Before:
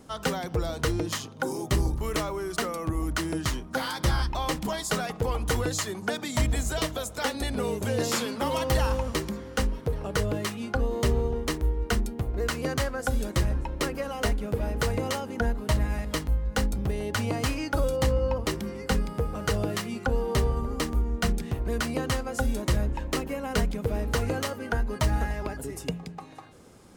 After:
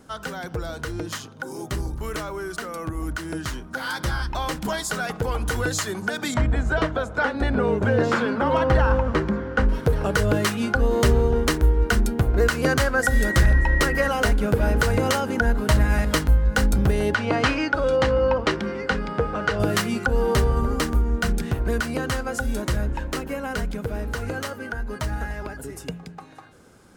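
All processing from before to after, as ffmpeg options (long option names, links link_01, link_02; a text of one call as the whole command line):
ffmpeg -i in.wav -filter_complex "[0:a]asettb=1/sr,asplit=3[link_01][link_02][link_03];[link_01]atrim=end=6.344[link_04];[link_02]atrim=start=6.34:end=9.69,asetpts=PTS-STARTPTS,afade=type=in:duration=0.004:curve=qsin,afade=type=out:start_time=3.346:duration=0.004:curve=qsin,lowpass=1600,aemphasis=mode=production:type=50kf[link_05];[link_03]atrim=start=9.686[link_06];[link_04][link_05]acrossfade=duration=0.004:curve1=hsin:curve2=qsin[link_07];[link_07][link_06]acrossfade=duration=0.004:curve1=qsin:curve2=hsin,asettb=1/sr,asplit=3[link_08][link_09][link_10];[link_08]atrim=end=13.034[link_11];[link_09]atrim=start=13.03:end=14.08,asetpts=PTS-STARTPTS,afade=type=in:duration=0.004:curve=qsin,afade=type=out:start_time=1.046:duration=0.004:curve=qsin,asubboost=boost=5:cutoff=130,aeval=exprs='val(0)+0.0178*sin(2*PI*1900*n/s)':channel_layout=same,aeval=exprs='0.168*(abs(mod(val(0)/0.168+3,4)-2)-1)':channel_layout=same[link_12];[link_10]atrim=start=14.076[link_13];[link_11][link_12]acrossfade=duration=0.004:curve1=hsin:curve2=qsin[link_14];[link_14][link_13]acrossfade=duration=0.004:curve1=qsin:curve2=hsin,asettb=1/sr,asplit=3[link_15][link_16][link_17];[link_15]atrim=end=17.144[link_18];[link_16]atrim=start=17.14:end=19.6,asetpts=PTS-STARTPTS,afade=type=in:duration=0.004:curve=qsin,afade=type=out:start_time=2.456:duration=0.004:curve=qsin,lowpass=3800,lowshelf=frequency=170:gain=-11[link_19];[link_17]atrim=start=19.596[link_20];[link_18][link_19]acrossfade=duration=0.004:curve1=hsin:curve2=qsin[link_21];[link_21][link_20]acrossfade=duration=0.004:curve1=qsin:curve2=hsin,equalizer=frequency=1500:width_type=o:width=0.28:gain=9,alimiter=limit=-19dB:level=0:latency=1:release=192,dynaudnorm=framelen=590:gausssize=21:maxgain=10dB" out.wav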